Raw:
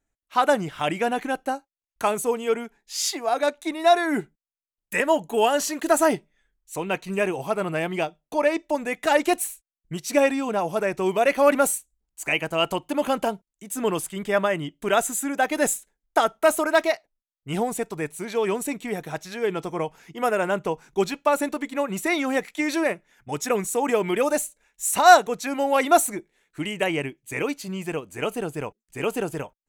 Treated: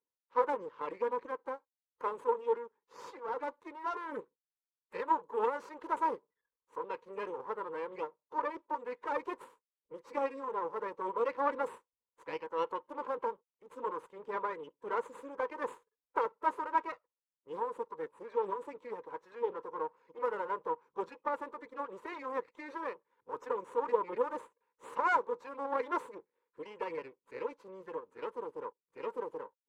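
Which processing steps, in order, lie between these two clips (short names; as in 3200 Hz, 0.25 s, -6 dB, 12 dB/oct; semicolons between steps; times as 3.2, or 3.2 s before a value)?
bin magnitudes rounded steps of 30 dB; half-wave rectifier; double band-pass 690 Hz, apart 0.99 oct; gain +1.5 dB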